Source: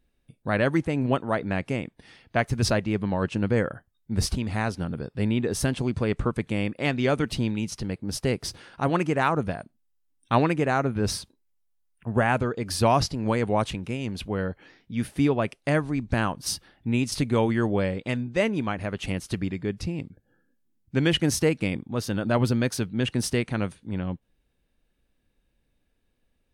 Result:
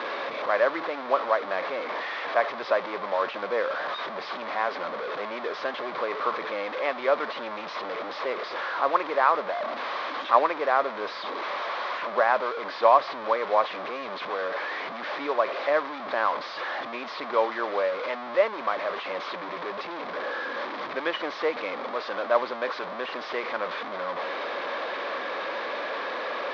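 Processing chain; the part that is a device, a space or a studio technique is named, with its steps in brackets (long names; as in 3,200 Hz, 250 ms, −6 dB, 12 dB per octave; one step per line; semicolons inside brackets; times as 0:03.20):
digital answering machine (band-pass filter 380–3,200 Hz; linear delta modulator 32 kbit/s, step −25.5 dBFS; loudspeaker in its box 490–3,600 Hz, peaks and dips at 570 Hz +7 dB, 1,100 Hz +9 dB, 2,800 Hz −8 dB)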